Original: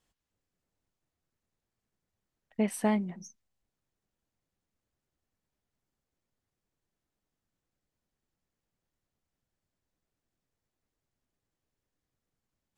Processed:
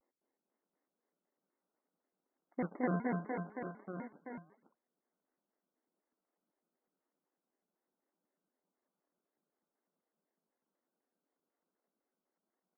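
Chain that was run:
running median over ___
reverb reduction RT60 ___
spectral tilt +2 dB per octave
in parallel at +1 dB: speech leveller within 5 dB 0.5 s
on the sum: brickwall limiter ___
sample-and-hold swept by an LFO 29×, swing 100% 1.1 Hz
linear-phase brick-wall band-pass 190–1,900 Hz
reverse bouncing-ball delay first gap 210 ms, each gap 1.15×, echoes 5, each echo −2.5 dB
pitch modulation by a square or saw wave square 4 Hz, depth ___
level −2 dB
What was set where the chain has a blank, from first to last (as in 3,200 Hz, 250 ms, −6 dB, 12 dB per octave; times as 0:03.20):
25 samples, 0.86 s, −22.5 dBFS, 250 cents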